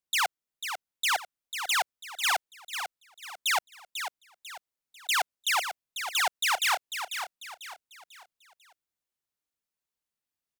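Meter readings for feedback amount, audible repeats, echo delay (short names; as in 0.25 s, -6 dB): 37%, 4, 0.495 s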